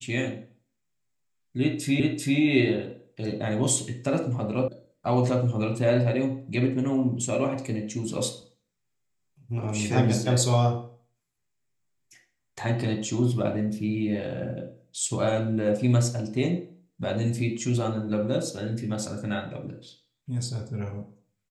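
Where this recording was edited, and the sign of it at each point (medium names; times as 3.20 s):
2.00 s: repeat of the last 0.39 s
4.68 s: sound stops dead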